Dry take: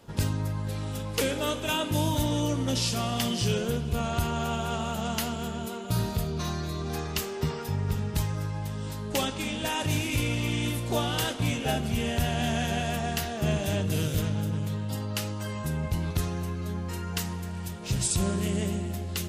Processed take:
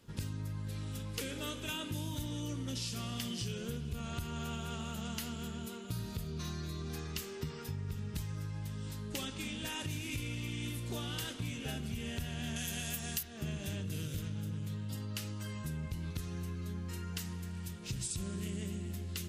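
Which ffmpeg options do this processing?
-filter_complex "[0:a]asettb=1/sr,asplit=3[s0][s1][s2];[s0]atrim=end=12.564[s3];[s1]atrim=start=12.56:end=13.23,asetpts=PTS-STARTPTS,afade=t=in:d=0.004:c=qsin,afade=t=out:st=0.666:d=0.004:c=qsin,aemphasis=mode=production:type=75fm[s4];[s2]atrim=start=13.226[s5];[s3][s4]acrossfade=d=0.004:c1=hsin:c2=qsin[s6];[s6][s5]acrossfade=d=0.004:c1=qsin:c2=hsin,equalizer=f=720:t=o:w=1.2:g=-10.5,acompressor=threshold=0.0355:ratio=6,volume=0.501"

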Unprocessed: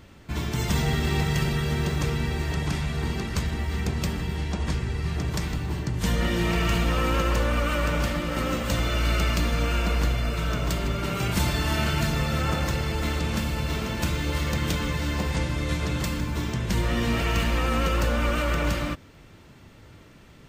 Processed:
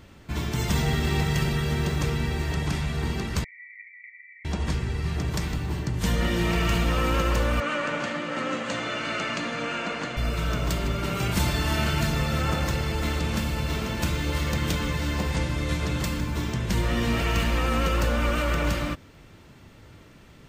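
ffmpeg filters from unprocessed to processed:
-filter_complex "[0:a]asettb=1/sr,asplit=3[s0][s1][s2];[s0]atrim=end=3.444[s3];[s1]atrim=start=3.44:end=4.45,asetpts=PTS-STARTPTS,afade=t=in:d=0.004:c=qsin,afade=t=out:st=1.006:d=0.004:c=qsin,asuperpass=centerf=2100:order=12:qfactor=4.6[s4];[s2]atrim=start=4.446[s5];[s3][s4]acrossfade=d=0.004:c1=hsin:c2=qsin[s6];[s6][s5]acrossfade=d=0.004:c1=qsin:c2=hsin,asettb=1/sr,asplit=3[s7][s8][s9];[s7]atrim=end=7.604[s10];[s8]atrim=start=7.6:end=10.17,asetpts=PTS-STARTPTS,afade=t=in:d=0.004:c=qsin,afade=t=out:st=2.566:d=0.004:c=qsin,highpass=f=160:w=0.5412,highpass=f=160:w=1.3066,equalizer=f=180:t=q:w=4:g=-8,equalizer=f=380:t=q:w=4:g=-5,equalizer=f=1700:t=q:w=4:g=3,equalizer=f=3700:t=q:w=4:g=-3,equalizer=f=5300:t=q:w=4:g=-7,lowpass=f=7000:w=0.5412,lowpass=f=7000:w=1.3066[s11];[s9]atrim=start=10.166[s12];[s10][s11]acrossfade=d=0.004:c1=hsin:c2=qsin[s13];[s13][s12]acrossfade=d=0.004:c1=qsin:c2=hsin"

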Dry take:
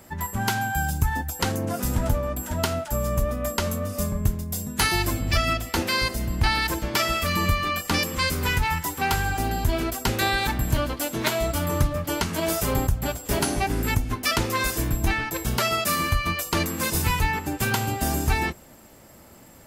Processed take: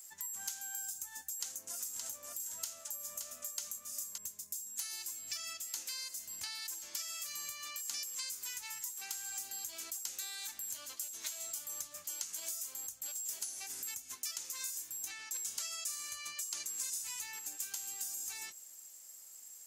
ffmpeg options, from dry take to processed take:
-filter_complex "[0:a]asettb=1/sr,asplit=3[s0][s1][s2];[s0]atrim=end=1.384[s3];[s1]atrim=start=1.38:end=4.18,asetpts=PTS-STARTPTS,afade=t=in:d=0.004:c=qsin,afade=t=out:st=2.796:d=0.004:c=qsin,aecho=1:1:570:0.422,atrim=end_sample=123480[s4];[s2]atrim=start=4.176[s5];[s3][s4]acrossfade=d=0.004:c1=hsin:c2=qsin[s6];[s6][s5]acrossfade=d=0.004:c1=qsin:c2=hsin,asettb=1/sr,asplit=3[s7][s8][s9];[s7]atrim=end=15.104[s10];[s8]atrim=start=15.1:end=17.21,asetpts=PTS-STARTPTS,afade=t=in:d=0.004:c=qsin,afade=t=out:st=2.106:d=0.004:c=qsin,equalizer=f=14000:w=2.8:g=-14.5[s11];[s9]atrim=start=17.206[s12];[s10][s11]acrossfade=d=0.004:c1=hsin:c2=qsin[s13];[s13][s12]acrossfade=d=0.004:c1=qsin:c2=hsin,aderivative,acompressor=threshold=0.0126:ratio=6,equalizer=f=6700:w=1.6:g=13.5,volume=0.501"

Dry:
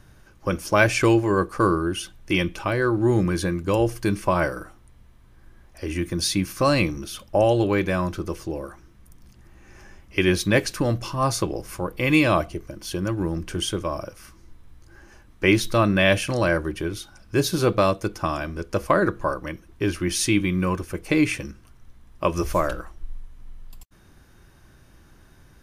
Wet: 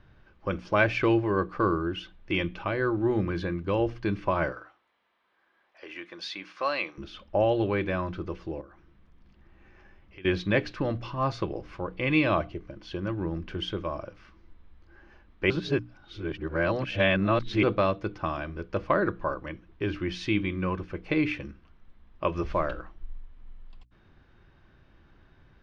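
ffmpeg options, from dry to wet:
-filter_complex "[0:a]asettb=1/sr,asplit=3[s0][s1][s2];[s0]atrim=end=4.524[s3];[s1]atrim=start=4.52:end=6.98,asetpts=PTS-STARTPTS,afade=t=in:d=0.004:c=qsin,afade=t=out:st=2.456:d=0.004:c=qsin,highpass=640[s4];[s2]atrim=start=6.976[s5];[s3][s4]acrossfade=d=0.004:c1=hsin:c2=qsin[s6];[s6][s5]acrossfade=d=0.004:c1=qsin:c2=hsin,asettb=1/sr,asplit=3[s7][s8][s9];[s7]atrim=end=8.614[s10];[s8]atrim=start=8.61:end=10.25,asetpts=PTS-STARTPTS,afade=t=in:d=0.004:c=qsin,afade=t=out:st=1.636:d=0.004:c=qsin,acompressor=threshold=0.00562:ratio=3:attack=3.2:release=140:knee=1:detection=peak[s11];[s9]atrim=start=10.246[s12];[s10][s11]acrossfade=d=0.004:c1=hsin:c2=qsin[s13];[s13][s12]acrossfade=d=0.004:c1=qsin:c2=hsin,asplit=3[s14][s15][s16];[s14]atrim=end=15.502[s17];[s15]atrim=start=15.498:end=17.632,asetpts=PTS-STARTPTS,areverse[s18];[s16]atrim=start=17.628[s19];[s17][s18]acrossfade=d=0.004:c1=hsin:c2=hsin[s20];[s20][s19]acrossfade=d=0.004:c1=hsin:c2=hsin,lowpass=f=3800:w=0.5412,lowpass=f=3800:w=1.3066,bandreject=f=60:t=h:w=6,bandreject=f=120:t=h:w=6,bandreject=f=180:t=h:w=6,bandreject=f=240:t=h:w=6,bandreject=f=300:t=h:w=6,volume=0.562"

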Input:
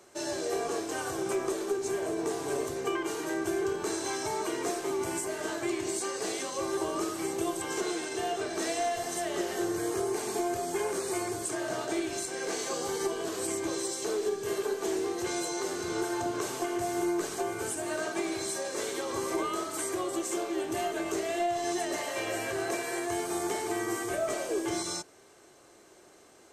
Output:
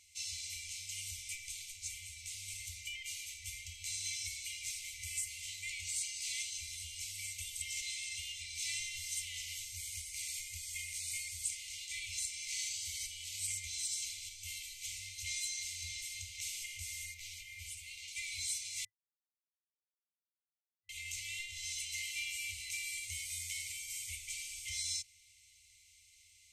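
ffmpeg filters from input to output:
-filter_complex "[0:a]asettb=1/sr,asplit=3[s0][s1][s2];[s0]atrim=end=17.144[s3];[s1]atrim=start=17.14:end=18.08,asetpts=PTS-STARTPTS,afade=t=in:d=0.004:c=qsin,afade=t=out:st=0.936:d=0.004:c=qsin,equalizer=f=8900:t=o:w=1.3:g=-10[s4];[s2]atrim=start=18.076[s5];[s3][s4]acrossfade=d=0.004:c1=hsin:c2=qsin[s6];[s6][s5]acrossfade=d=0.004:c1=qsin:c2=hsin,asplit=3[s7][s8][s9];[s7]atrim=end=18.85,asetpts=PTS-STARTPTS,afade=t=out:st=18.846:d=0.004:c=hsin[s10];[s8]atrim=start=18.85:end=20.89,asetpts=PTS-STARTPTS,volume=0[s11];[s9]atrim=start=20.89,asetpts=PTS-STARTPTS,afade=t=in:d=0.004:c=hsin[s12];[s10][s11][s12]concat=n=3:v=0:a=1,afftfilt=real='re*(1-between(b*sr/4096,100,2000))':imag='im*(1-between(b*sr/4096,100,2000))':win_size=4096:overlap=0.75,highshelf=f=7600:g=-3"

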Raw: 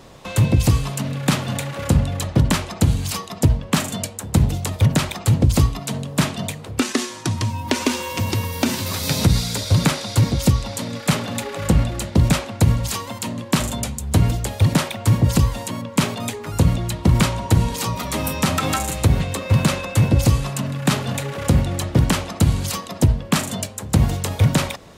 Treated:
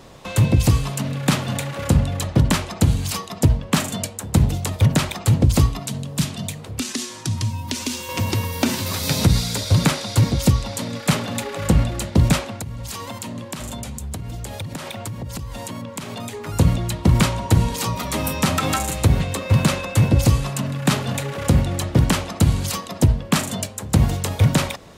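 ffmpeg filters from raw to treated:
-filter_complex "[0:a]asettb=1/sr,asplit=3[s0][s1][s2];[s0]atrim=end=5.864[s3];[s1]atrim=start=5.86:end=8.09,asetpts=PTS-STARTPTS,afade=t=in:d=0.004:c=qsin,afade=t=out:st=2.226:d=0.004:c=qsin,acrossover=split=220|3000[s4][s5][s6];[s5]acompressor=threshold=0.0141:ratio=3:attack=3.2:release=140:knee=2.83:detection=peak[s7];[s4][s7][s6]amix=inputs=3:normalize=0[s8];[s2]atrim=start=8.086[s9];[s3][s8]acrossfade=d=0.004:c1=hsin:c2=qsin[s10];[s10][s9]acrossfade=d=0.004:c1=qsin:c2=hsin,asettb=1/sr,asplit=3[s11][s12][s13];[s11]atrim=end=12.554[s14];[s12]atrim=start=12.55:end=16.49,asetpts=PTS-STARTPTS,afade=t=in:d=0.004:c=qsin,afade=t=out:st=3.936:d=0.004:c=qsin,acompressor=threshold=0.0501:ratio=16:attack=3.2:release=140:knee=1:detection=peak[s15];[s13]atrim=start=16.486[s16];[s14][s15]acrossfade=d=0.004:c1=hsin:c2=qsin[s17];[s17][s16]acrossfade=d=0.004:c1=qsin:c2=hsin"

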